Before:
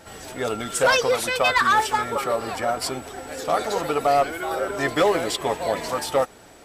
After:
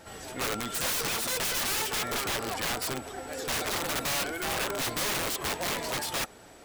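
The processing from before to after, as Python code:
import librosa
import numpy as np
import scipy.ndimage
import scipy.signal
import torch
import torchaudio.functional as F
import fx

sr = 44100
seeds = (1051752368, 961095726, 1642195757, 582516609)

y = (np.mod(10.0 ** (21.5 / 20.0) * x + 1.0, 2.0) - 1.0) / 10.0 ** (21.5 / 20.0)
y = y * 10.0 ** (-3.5 / 20.0)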